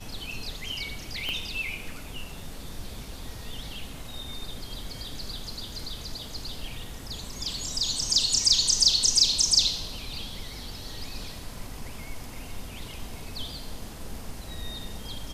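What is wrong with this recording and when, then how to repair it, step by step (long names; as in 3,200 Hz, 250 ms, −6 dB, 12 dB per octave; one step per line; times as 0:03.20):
0:01.29: click −17 dBFS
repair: click removal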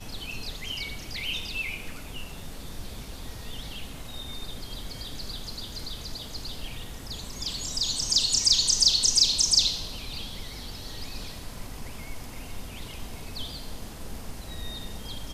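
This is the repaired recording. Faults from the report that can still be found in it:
0:01.29: click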